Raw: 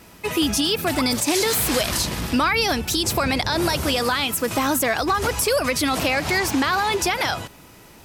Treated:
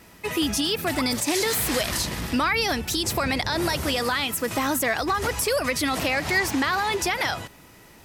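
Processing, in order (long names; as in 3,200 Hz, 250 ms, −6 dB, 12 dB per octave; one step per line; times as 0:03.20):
parametric band 1,900 Hz +5.5 dB 0.2 octaves
level −3.5 dB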